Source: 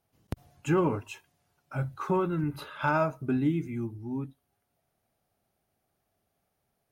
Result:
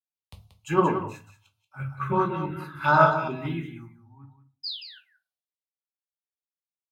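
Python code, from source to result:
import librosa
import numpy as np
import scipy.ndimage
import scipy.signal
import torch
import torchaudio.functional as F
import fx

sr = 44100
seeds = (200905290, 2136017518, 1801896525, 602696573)

y = fx.reverse_delay(x, sr, ms=165, wet_db=-4, at=(0.97, 3.54))
y = scipy.signal.sosfilt(scipy.signal.butter(2, 60.0, 'highpass', fs=sr, output='sos'), y)
y = fx.band_shelf(y, sr, hz=1900.0, db=9.5, octaves=2.7)
y = fx.spec_paint(y, sr, seeds[0], shape='fall', start_s=4.63, length_s=0.36, low_hz=1400.0, high_hz=5200.0, level_db=-34.0)
y = fx.env_phaser(y, sr, low_hz=250.0, high_hz=2300.0, full_db=-18.0)
y = y + 10.0 ** (-6.5 / 20.0) * np.pad(y, (int(183 * sr / 1000.0), 0))[:len(y)]
y = fx.room_shoebox(y, sr, seeds[1], volume_m3=140.0, walls='furnished', distance_m=1.1)
y = fx.band_widen(y, sr, depth_pct=100)
y = F.gain(torch.from_numpy(y), -4.5).numpy()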